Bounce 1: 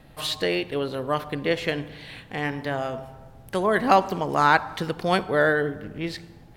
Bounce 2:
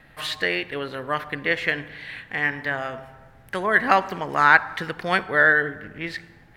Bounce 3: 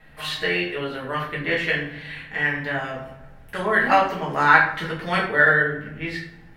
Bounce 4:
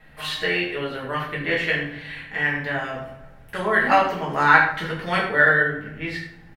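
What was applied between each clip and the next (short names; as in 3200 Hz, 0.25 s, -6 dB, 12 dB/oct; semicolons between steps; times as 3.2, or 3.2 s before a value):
bell 1800 Hz +14 dB 1.1 oct; gain -4.5 dB
shoebox room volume 60 m³, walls mixed, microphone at 1.4 m; gain -6 dB
echo 76 ms -12.5 dB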